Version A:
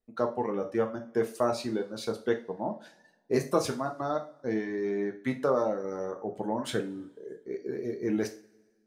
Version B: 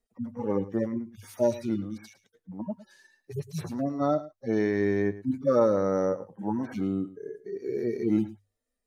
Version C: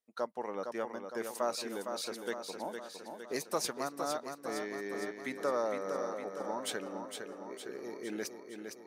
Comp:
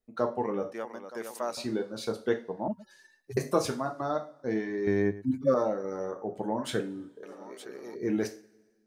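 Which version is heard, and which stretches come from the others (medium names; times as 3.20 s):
A
0.73–1.57 s: from C
2.68–3.37 s: from B
4.87–5.54 s: from B
7.23–7.95 s: from C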